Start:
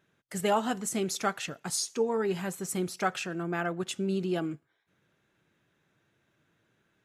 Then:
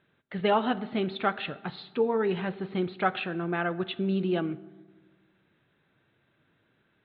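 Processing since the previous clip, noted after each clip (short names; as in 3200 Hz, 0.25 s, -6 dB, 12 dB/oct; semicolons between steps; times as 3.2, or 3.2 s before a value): steep low-pass 4000 Hz 96 dB/oct; reverb RT60 1.3 s, pre-delay 4 ms, DRR 15.5 dB; gain +2.5 dB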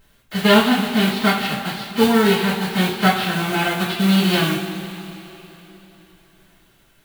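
spectral whitening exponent 0.3; two-slope reverb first 0.33 s, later 3.6 s, from -18 dB, DRR -10 dB; added noise brown -60 dBFS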